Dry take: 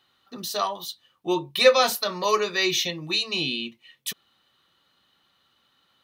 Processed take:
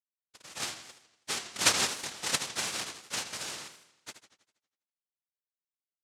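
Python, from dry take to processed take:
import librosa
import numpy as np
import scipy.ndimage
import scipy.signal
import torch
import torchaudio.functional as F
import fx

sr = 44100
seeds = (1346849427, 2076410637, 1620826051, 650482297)

y = fx.lower_of_two(x, sr, delay_ms=1.1)
y = fx.power_curve(y, sr, exponent=1.4)
y = fx.backlash(y, sr, play_db=-40.0)
y = fx.noise_vocoder(y, sr, seeds[0], bands=1)
y = fx.echo_warbled(y, sr, ms=81, feedback_pct=53, rate_hz=2.8, cents=201, wet_db=-10.5)
y = y * 10.0 ** (-1.5 / 20.0)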